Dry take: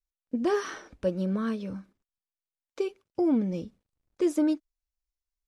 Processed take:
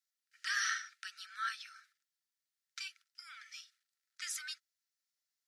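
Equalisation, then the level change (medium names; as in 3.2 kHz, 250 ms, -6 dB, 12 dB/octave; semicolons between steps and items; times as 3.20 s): rippled Chebyshev high-pass 1.3 kHz, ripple 6 dB; +8.0 dB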